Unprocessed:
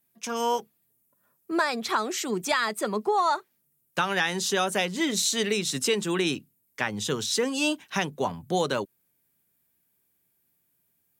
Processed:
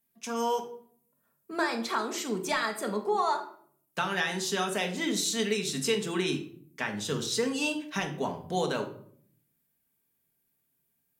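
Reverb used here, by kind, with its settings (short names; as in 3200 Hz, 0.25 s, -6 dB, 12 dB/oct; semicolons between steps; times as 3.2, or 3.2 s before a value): shoebox room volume 830 m³, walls furnished, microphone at 1.6 m; gain -5.5 dB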